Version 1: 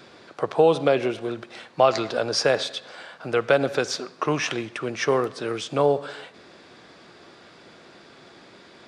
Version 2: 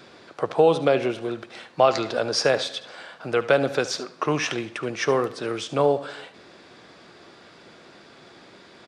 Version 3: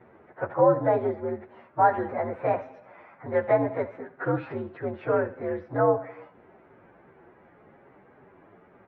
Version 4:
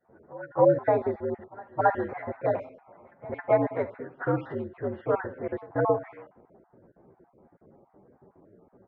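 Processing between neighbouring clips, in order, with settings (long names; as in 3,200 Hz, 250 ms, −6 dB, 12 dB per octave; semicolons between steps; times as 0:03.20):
single-tap delay 73 ms −15.5 dB
partials spread apart or drawn together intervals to 119%; low-pass filter 1,700 Hz 24 dB per octave
time-frequency cells dropped at random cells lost 32%; low-pass that shuts in the quiet parts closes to 580 Hz, open at −24 dBFS; echo ahead of the sound 270 ms −22 dB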